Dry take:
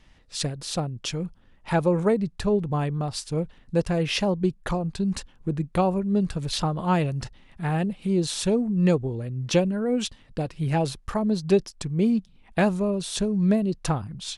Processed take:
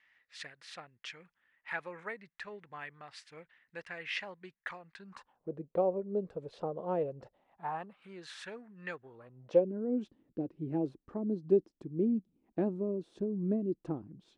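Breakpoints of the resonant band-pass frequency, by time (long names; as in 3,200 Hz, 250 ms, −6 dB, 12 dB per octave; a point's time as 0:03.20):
resonant band-pass, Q 3.7
0:04.93 1,900 Hz
0:05.55 490 Hz
0:07.17 490 Hz
0:08.19 1,700 Hz
0:09.03 1,700 Hz
0:09.76 320 Hz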